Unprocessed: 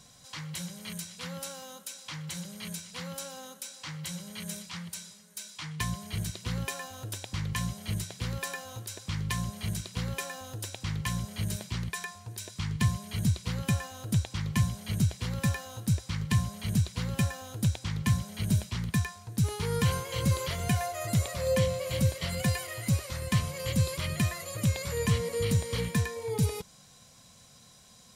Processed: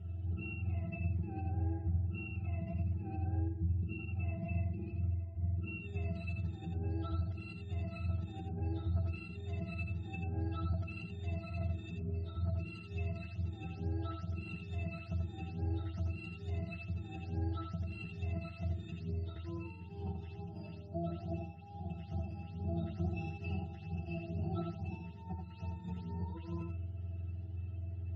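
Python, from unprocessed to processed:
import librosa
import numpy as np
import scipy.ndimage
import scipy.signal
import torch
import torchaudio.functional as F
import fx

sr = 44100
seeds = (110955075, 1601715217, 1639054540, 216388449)

y = fx.octave_mirror(x, sr, pivot_hz=650.0)
y = fx.band_shelf(y, sr, hz=1100.0, db=-11.5, octaves=2.3, at=(3.39, 3.99))
y = fx.over_compress(y, sr, threshold_db=-41.0, ratio=-1.0)
y = fx.octave_resonator(y, sr, note='E', decay_s=0.18)
y = y + 10.0 ** (-4.5 / 20.0) * np.pad(y, (int(84 * sr / 1000.0), 0))[:len(y)]
y = y * librosa.db_to_amplitude(11.5)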